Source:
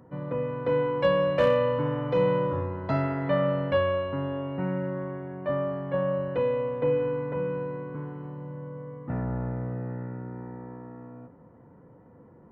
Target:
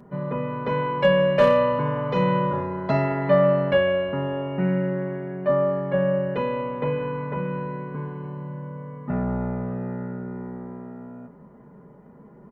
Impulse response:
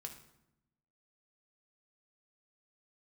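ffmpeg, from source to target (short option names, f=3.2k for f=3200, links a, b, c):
-af "aecho=1:1:4.9:0.84,volume=3.5dB"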